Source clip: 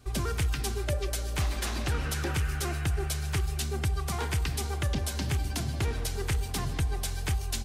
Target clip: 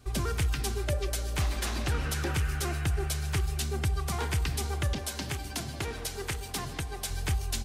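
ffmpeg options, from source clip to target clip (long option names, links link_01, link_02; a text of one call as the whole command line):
ffmpeg -i in.wav -filter_complex "[0:a]asettb=1/sr,asplit=3[link_01][link_02][link_03];[link_01]atrim=end=4.934[link_04];[link_02]atrim=start=4.93:end=7.1,asetpts=PTS-STARTPTS,afade=type=in:duration=0.004:curve=qsin,afade=type=out:start_time=2.166:duration=0.004:curve=qsin,lowshelf=frequency=160:gain=-10.5[link_05];[link_03]atrim=start=7.096[link_06];[link_04][link_05]acrossfade=duration=0.004:curve1=hsin:curve2=qsin[link_07];[link_07][link_06]acrossfade=duration=0.004:curve1=qsin:curve2=hsin" out.wav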